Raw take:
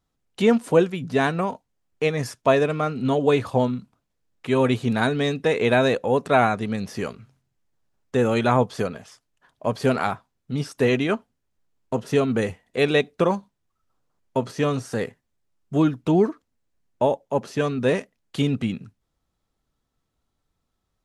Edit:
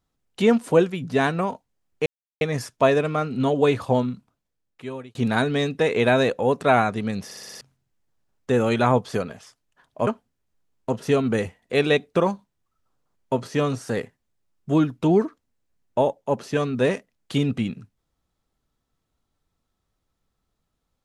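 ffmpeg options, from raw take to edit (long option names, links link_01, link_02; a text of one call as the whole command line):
ffmpeg -i in.wav -filter_complex "[0:a]asplit=10[link_01][link_02][link_03][link_04][link_05][link_06][link_07][link_08][link_09][link_10];[link_01]atrim=end=2.06,asetpts=PTS-STARTPTS,afade=type=out:start_time=2.056:duration=0.004:curve=hsin,apad=pad_dur=0.35[link_11];[link_02]atrim=start=2.06:end=4.8,asetpts=PTS-STARTPTS,afade=type=in:duration=0.004:curve=hsin,afade=type=out:start_time=1.68:duration=1.06[link_12];[link_03]atrim=start=4.8:end=6.962,asetpts=PTS-STARTPTS,afade=type=in:duration=0.004:curve=hsin[link_13];[link_04]atrim=start=6.898:end=6.962[link_14];[link_05]atrim=start=6.898:end=6.962[link_15];[link_06]atrim=start=6.898:end=6.962[link_16];[link_07]atrim=start=6.898:end=6.962[link_17];[link_08]atrim=start=6.898:end=6.962[link_18];[link_09]atrim=start=7.258:end=9.722[link_19];[link_10]atrim=start=11.108[link_20];[link_11][link_12][link_13]concat=n=3:v=0:a=1[link_21];[link_21][link_14]acrossfade=duration=0.004:curve1=hsin:curve2=hsin[link_22];[link_22][link_15]acrossfade=duration=0.004:curve1=hsin:curve2=hsin[link_23];[link_23][link_16]acrossfade=duration=0.004:curve1=hsin:curve2=hsin[link_24];[link_24][link_17]acrossfade=duration=0.004:curve1=hsin:curve2=hsin[link_25];[link_25][link_18]acrossfade=duration=0.004:curve1=hsin:curve2=hsin[link_26];[link_26][link_19]acrossfade=duration=0.004:curve1=hsin:curve2=hsin[link_27];[link_27][link_20]acrossfade=duration=0.004:curve1=hsin:curve2=hsin" out.wav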